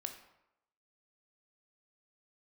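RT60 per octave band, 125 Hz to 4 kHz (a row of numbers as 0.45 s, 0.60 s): 0.75 s, 0.75 s, 0.85 s, 0.85 s, 0.75 s, 0.55 s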